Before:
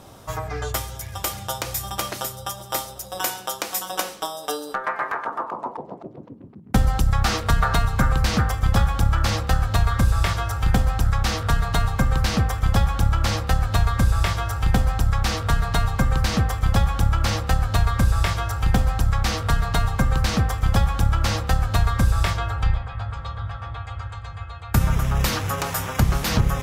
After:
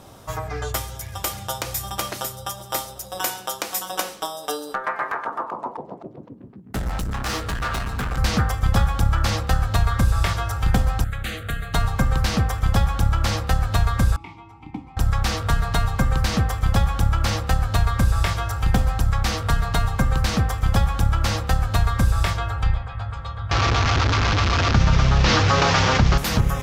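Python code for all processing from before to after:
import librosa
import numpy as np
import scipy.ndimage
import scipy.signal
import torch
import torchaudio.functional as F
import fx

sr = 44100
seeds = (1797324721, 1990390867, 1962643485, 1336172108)

y = fx.chain(x, sr, fx.peak_eq(hz=1700.0, db=3.5, octaves=0.31),
    fx.clip_hard(threshold_db=-23.5),
    fx.doubler(ms=16.0, db=-8.5), at=(6.36, 8.18))
y = fx.chain(y, sr, fx.low_shelf(hz=240.0, db=-8.5),
    fx.fixed_phaser(hz=2300.0, stages=4), at=(11.04, 11.74))
y = fx.chain(y, sr, fx.vowel_filter(vowel='u'),
    fx.peak_eq(hz=160.0, db=5.0, octaves=1.8), at=(14.16, 14.97))
y = fx.chain(y, sr, fx.delta_mod(bps=32000, step_db=-25.5),
    fx.env_flatten(amount_pct=70), at=(23.51, 26.18))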